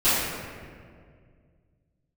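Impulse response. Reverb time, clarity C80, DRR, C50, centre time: 2.1 s, 0.0 dB, −17.0 dB, −2.5 dB, 124 ms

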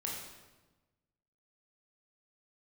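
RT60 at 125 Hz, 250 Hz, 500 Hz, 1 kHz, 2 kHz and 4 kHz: 1.6, 1.4, 1.2, 1.1, 1.0, 0.90 seconds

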